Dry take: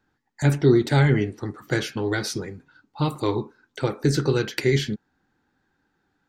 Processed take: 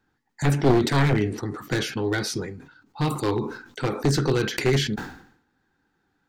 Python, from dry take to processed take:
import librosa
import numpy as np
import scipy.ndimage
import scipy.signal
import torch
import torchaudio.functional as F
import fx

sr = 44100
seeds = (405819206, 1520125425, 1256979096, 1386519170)

y = np.minimum(x, 2.0 * 10.0 ** (-17.0 / 20.0) - x)
y = fx.notch(y, sr, hz=590.0, q=15.0)
y = fx.sustainer(y, sr, db_per_s=89.0)